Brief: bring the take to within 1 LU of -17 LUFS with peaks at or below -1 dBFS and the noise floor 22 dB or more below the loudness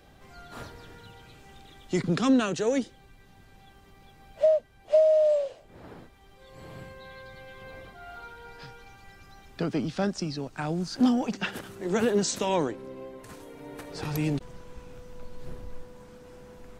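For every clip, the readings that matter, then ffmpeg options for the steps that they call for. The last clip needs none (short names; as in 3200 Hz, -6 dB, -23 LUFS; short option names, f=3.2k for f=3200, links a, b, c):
loudness -27.0 LUFS; peak -12.0 dBFS; loudness target -17.0 LUFS
-> -af "volume=10dB"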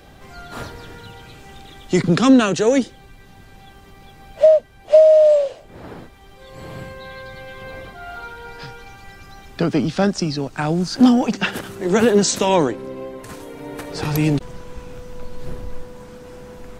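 loudness -17.0 LUFS; peak -2.0 dBFS; noise floor -45 dBFS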